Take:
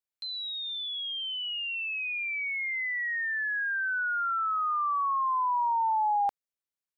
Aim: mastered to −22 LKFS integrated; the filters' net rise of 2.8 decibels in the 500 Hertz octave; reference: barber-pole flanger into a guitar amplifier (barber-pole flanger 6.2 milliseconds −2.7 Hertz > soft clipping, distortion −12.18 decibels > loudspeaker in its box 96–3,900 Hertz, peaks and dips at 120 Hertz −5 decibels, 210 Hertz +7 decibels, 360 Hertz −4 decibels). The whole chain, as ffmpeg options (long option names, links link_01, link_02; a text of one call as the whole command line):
ffmpeg -i in.wav -filter_complex "[0:a]equalizer=frequency=500:width_type=o:gain=4.5,asplit=2[link_01][link_02];[link_02]adelay=6.2,afreqshift=-2.7[link_03];[link_01][link_03]amix=inputs=2:normalize=1,asoftclip=threshold=-30dB,highpass=96,equalizer=frequency=120:width_type=q:width=4:gain=-5,equalizer=frequency=210:width_type=q:width=4:gain=7,equalizer=frequency=360:width_type=q:width=4:gain=-4,lowpass=frequency=3900:width=0.5412,lowpass=frequency=3900:width=1.3066,volume=12dB" out.wav